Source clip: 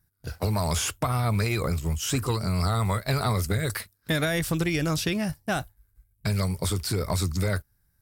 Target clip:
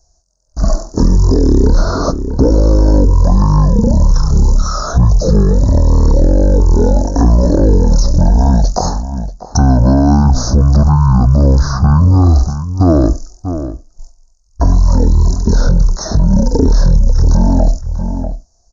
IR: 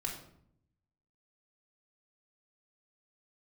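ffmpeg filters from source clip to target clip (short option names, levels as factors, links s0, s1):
-filter_complex "[0:a]agate=range=0.316:threshold=0.002:ratio=16:detection=peak,acrossover=split=1200[s0][s1];[s1]acompressor=threshold=0.0112:ratio=6[s2];[s0][s2]amix=inputs=2:normalize=0,asetrate=18875,aresample=44100,asuperstop=centerf=2600:order=8:qfactor=0.72,asplit=2[s3][s4];[s4]adelay=641.4,volume=0.158,highshelf=f=4000:g=-14.4[s5];[s3][s5]amix=inputs=2:normalize=0,alimiter=level_in=20:limit=0.891:release=50:level=0:latency=1,volume=0.841"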